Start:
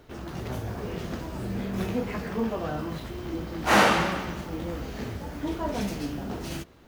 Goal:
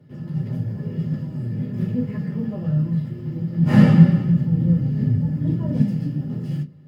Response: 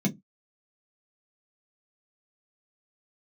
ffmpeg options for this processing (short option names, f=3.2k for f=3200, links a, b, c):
-filter_complex "[0:a]asettb=1/sr,asplit=3[a][b][c];[a]atrim=end=3.574[d];[b]atrim=start=3.57:end=5.82,asetpts=PTS-STARTPTS,afade=t=in:d=0.004:c=qsin,afade=t=out:st=2.246:d=0.004:c=qsin,lowshelf=f=270:g=10.5[e];[c]atrim=start=5.816[f];[d][e]acrossfade=d=0.004:c1=hsin:c2=qsin[g];[g][f]acrossfade=d=0.004:c1=qsin:c2=hsin[h];[1:a]atrim=start_sample=2205,asetrate=34839,aresample=44100[i];[h][i]afir=irnorm=-1:irlink=0,volume=-15.5dB"